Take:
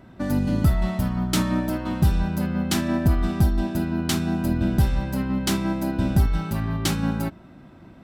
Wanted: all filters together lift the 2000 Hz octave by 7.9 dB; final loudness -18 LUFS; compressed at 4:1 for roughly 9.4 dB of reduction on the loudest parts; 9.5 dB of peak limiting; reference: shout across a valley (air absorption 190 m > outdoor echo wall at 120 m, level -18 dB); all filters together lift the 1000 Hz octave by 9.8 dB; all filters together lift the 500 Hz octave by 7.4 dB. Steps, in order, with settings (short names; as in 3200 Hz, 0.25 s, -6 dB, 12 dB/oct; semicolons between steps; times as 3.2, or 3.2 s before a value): bell 500 Hz +7.5 dB; bell 1000 Hz +9 dB; bell 2000 Hz +8.5 dB; compressor 4:1, threshold -24 dBFS; limiter -20 dBFS; air absorption 190 m; outdoor echo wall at 120 m, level -18 dB; gain +12 dB